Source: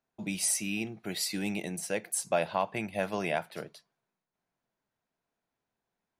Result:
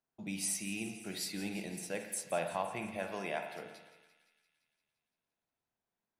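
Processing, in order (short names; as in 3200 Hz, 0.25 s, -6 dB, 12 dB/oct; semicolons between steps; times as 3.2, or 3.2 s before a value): 2.97–3.66 HPF 250 Hz 6 dB/oct; thinning echo 0.172 s, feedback 69%, high-pass 1200 Hz, level -13.5 dB; reverb RT60 1.1 s, pre-delay 41 ms, DRR 5.5 dB; gain -7 dB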